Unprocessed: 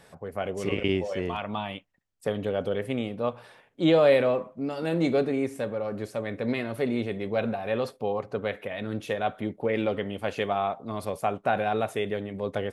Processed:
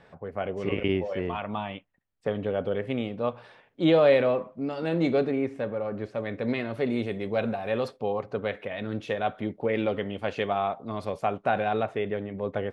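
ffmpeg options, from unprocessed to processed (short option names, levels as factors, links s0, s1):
-af "asetnsamples=n=441:p=0,asendcmd='2.87 lowpass f 4800;5.31 lowpass f 2900;6.18 lowpass f 5000;6.9 lowpass f 10000;7.88 lowpass f 5200;11.83 lowpass f 2500',lowpass=2900"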